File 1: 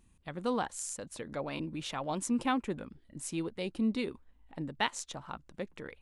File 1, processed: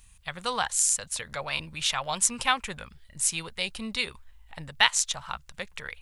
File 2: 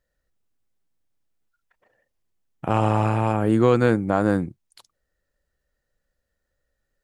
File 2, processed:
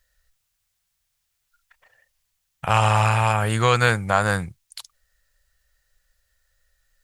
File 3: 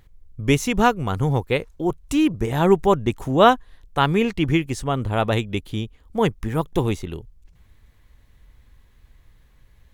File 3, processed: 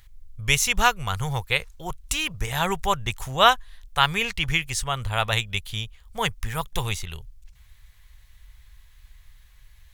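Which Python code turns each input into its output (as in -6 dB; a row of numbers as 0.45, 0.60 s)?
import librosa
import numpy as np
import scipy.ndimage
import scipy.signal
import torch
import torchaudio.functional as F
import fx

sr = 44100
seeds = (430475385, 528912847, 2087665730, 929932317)

y = fx.tone_stack(x, sr, knobs='10-0-10')
y = librosa.util.normalize(y) * 10.0 ** (-2 / 20.0)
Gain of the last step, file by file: +16.5, +15.0, +8.0 dB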